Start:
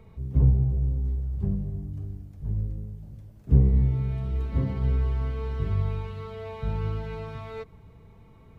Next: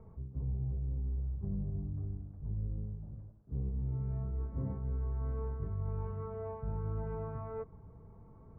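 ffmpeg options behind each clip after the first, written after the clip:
-af "lowpass=f=1300:w=0.5412,lowpass=f=1300:w=1.3066,areverse,acompressor=threshold=0.0355:ratio=16,areverse,volume=0.708"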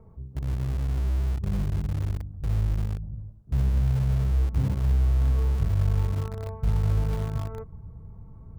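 -filter_complex "[0:a]asubboost=boost=3:cutoff=200,asplit=2[s0][s1];[s1]acrusher=bits=4:mix=0:aa=0.000001,volume=0.266[s2];[s0][s2]amix=inputs=2:normalize=0,volume=1.33"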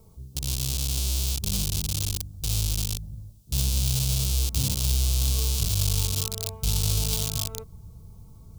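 -af "aexciter=amount=11:drive=8.9:freq=2900,volume=0.75"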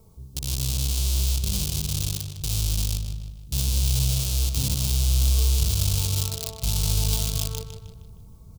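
-filter_complex "[0:a]asplit=2[s0][s1];[s1]adelay=155,lowpass=f=5000:p=1,volume=0.447,asplit=2[s2][s3];[s3]adelay=155,lowpass=f=5000:p=1,volume=0.47,asplit=2[s4][s5];[s5]adelay=155,lowpass=f=5000:p=1,volume=0.47,asplit=2[s6][s7];[s7]adelay=155,lowpass=f=5000:p=1,volume=0.47,asplit=2[s8][s9];[s9]adelay=155,lowpass=f=5000:p=1,volume=0.47,asplit=2[s10][s11];[s11]adelay=155,lowpass=f=5000:p=1,volume=0.47[s12];[s0][s2][s4][s6][s8][s10][s12]amix=inputs=7:normalize=0"

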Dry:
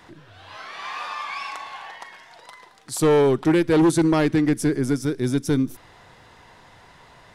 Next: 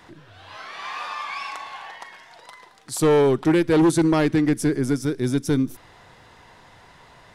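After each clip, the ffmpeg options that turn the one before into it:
-af anull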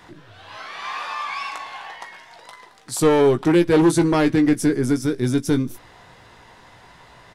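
-filter_complex "[0:a]asplit=2[s0][s1];[s1]adelay=17,volume=0.398[s2];[s0][s2]amix=inputs=2:normalize=0,volume=1.19"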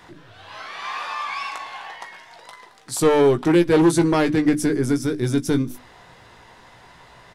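-af "bandreject=f=50:t=h:w=6,bandreject=f=100:t=h:w=6,bandreject=f=150:t=h:w=6,bandreject=f=200:t=h:w=6,bandreject=f=250:t=h:w=6,bandreject=f=300:t=h:w=6"

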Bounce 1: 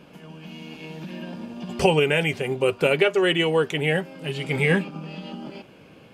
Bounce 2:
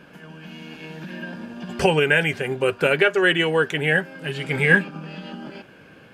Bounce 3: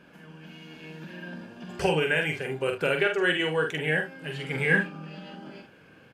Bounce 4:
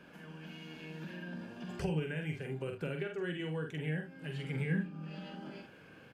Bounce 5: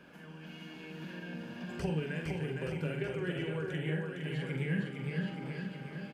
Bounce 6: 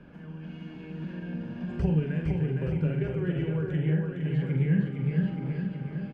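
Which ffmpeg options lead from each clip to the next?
-af "equalizer=f=1600:w=3.9:g=12.5"
-af "aecho=1:1:45|74:0.562|0.188,volume=0.422"
-filter_complex "[0:a]acrossover=split=270[s0][s1];[s1]acompressor=threshold=0.00562:ratio=3[s2];[s0][s2]amix=inputs=2:normalize=0,volume=0.794"
-af "aecho=1:1:460|874|1247|1582|1884:0.631|0.398|0.251|0.158|0.1"
-af "aemphasis=mode=reproduction:type=riaa"

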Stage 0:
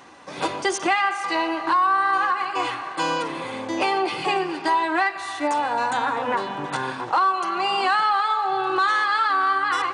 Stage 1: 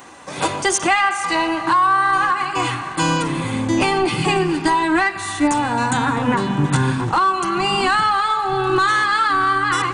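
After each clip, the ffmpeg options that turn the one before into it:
-af "acontrast=38,asubboost=boost=12:cutoff=170,aexciter=amount=3.5:drive=1.4:freq=6800"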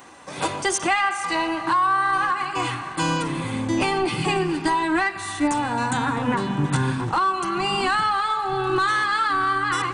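-af "bandreject=f=6800:w=25,volume=0.596"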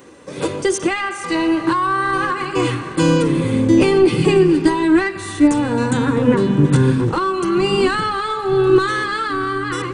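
-af "lowshelf=f=600:t=q:w=3:g=6.5,dynaudnorm=f=410:g=7:m=3.76,volume=0.891"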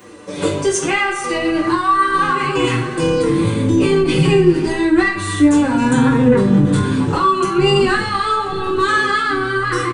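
-filter_complex "[0:a]acrossover=split=150[s0][s1];[s1]alimiter=limit=0.224:level=0:latency=1:release=20[s2];[s0][s2]amix=inputs=2:normalize=0,aecho=1:1:20|42|66.2|92.82|122.1:0.631|0.398|0.251|0.158|0.1,asplit=2[s3][s4];[s4]adelay=6.2,afreqshift=-0.61[s5];[s3][s5]amix=inputs=2:normalize=1,volume=1.88"

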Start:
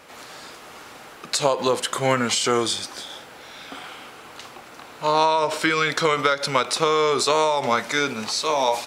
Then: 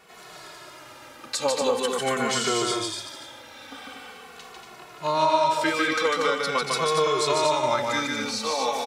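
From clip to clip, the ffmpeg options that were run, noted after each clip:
-filter_complex "[0:a]asplit=2[s0][s1];[s1]aecho=0:1:148.7|236.2:0.708|0.562[s2];[s0][s2]amix=inputs=2:normalize=0,asplit=2[s3][s4];[s4]adelay=2.3,afreqshift=-0.44[s5];[s3][s5]amix=inputs=2:normalize=1,volume=0.75"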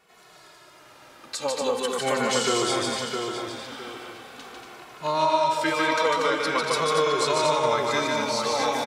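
-filter_complex "[0:a]asplit=2[s0][s1];[s1]adelay=662,lowpass=f=3100:p=1,volume=0.562,asplit=2[s2][s3];[s3]adelay=662,lowpass=f=3100:p=1,volume=0.32,asplit=2[s4][s5];[s5]adelay=662,lowpass=f=3100:p=1,volume=0.32,asplit=2[s6][s7];[s7]adelay=662,lowpass=f=3100:p=1,volume=0.32[s8];[s0][s2][s4][s6][s8]amix=inputs=5:normalize=0,dynaudnorm=f=350:g=9:m=3.76,volume=0.422"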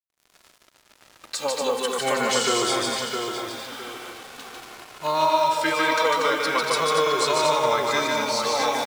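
-af "lowshelf=f=330:g=-5.5,acrusher=bits=6:mix=0:aa=0.5,volume=1.33"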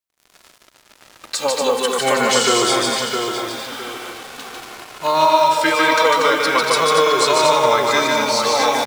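-af "bandreject=f=50:t=h:w=6,bandreject=f=100:t=h:w=6,bandreject=f=150:t=h:w=6,volume=2.11"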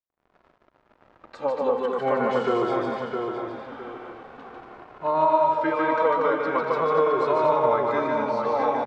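-af "lowpass=1100,volume=0.596"

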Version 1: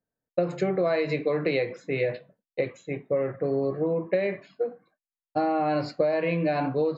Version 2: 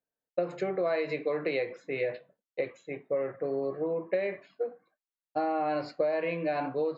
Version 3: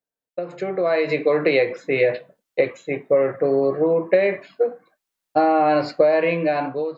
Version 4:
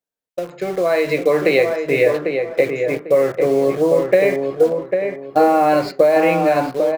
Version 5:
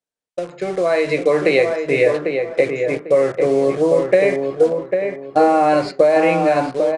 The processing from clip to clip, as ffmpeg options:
-af "bass=f=250:g=-10,treble=f=4000:g=-5,volume=0.668"
-af "dynaudnorm=f=240:g=7:m=4.47"
-filter_complex "[0:a]asplit=2[s0][s1];[s1]acrusher=bits=4:mix=0:aa=0.000001,volume=0.376[s2];[s0][s2]amix=inputs=2:normalize=0,asplit=2[s3][s4];[s4]adelay=798,lowpass=f=1800:p=1,volume=0.562,asplit=2[s5][s6];[s6]adelay=798,lowpass=f=1800:p=1,volume=0.29,asplit=2[s7][s8];[s8]adelay=798,lowpass=f=1800:p=1,volume=0.29,asplit=2[s9][s10];[s10]adelay=798,lowpass=f=1800:p=1,volume=0.29[s11];[s3][s5][s7][s9][s11]amix=inputs=5:normalize=0"
-af "aresample=22050,aresample=44100"

